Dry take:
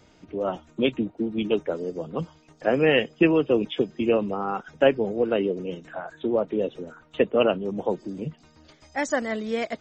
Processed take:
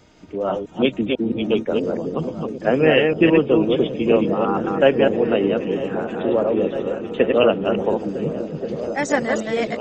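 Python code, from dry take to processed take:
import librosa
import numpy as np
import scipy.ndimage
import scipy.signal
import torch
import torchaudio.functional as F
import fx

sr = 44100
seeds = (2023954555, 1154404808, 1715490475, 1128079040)

p1 = fx.reverse_delay(x, sr, ms=165, wet_db=-3.0)
p2 = fx.high_shelf(p1, sr, hz=4600.0, db=-6.5, at=(2.8, 3.93))
p3 = p2 + fx.echo_opening(p2, sr, ms=476, hz=200, octaves=1, feedback_pct=70, wet_db=-6, dry=0)
y = p3 * 10.0 ** (3.5 / 20.0)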